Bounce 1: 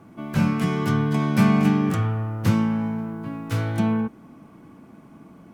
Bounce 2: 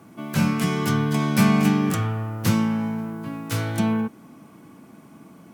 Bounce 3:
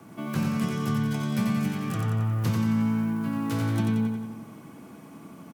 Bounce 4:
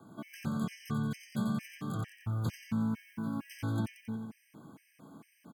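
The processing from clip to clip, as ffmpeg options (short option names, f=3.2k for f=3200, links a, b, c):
-af "highpass=96,highshelf=f=3.7k:g=10.5"
-filter_complex "[0:a]acrossover=split=160|950|5200[a][b][c][d];[a]acompressor=threshold=-32dB:ratio=4[e];[b]acompressor=threshold=-31dB:ratio=4[f];[c]acompressor=threshold=-43dB:ratio=4[g];[d]acompressor=threshold=-49dB:ratio=4[h];[e][f][g][h]amix=inputs=4:normalize=0,asplit=2[i][j];[j]aecho=0:1:90|180|270|360|450|540|630:0.631|0.347|0.191|0.105|0.0577|0.0318|0.0175[k];[i][k]amix=inputs=2:normalize=0"
-af "afftfilt=real='re*gt(sin(2*PI*2.2*pts/sr)*(1-2*mod(floor(b*sr/1024/1600),2)),0)':imag='im*gt(sin(2*PI*2.2*pts/sr)*(1-2*mod(floor(b*sr/1024/1600),2)),0)':win_size=1024:overlap=0.75,volume=-6.5dB"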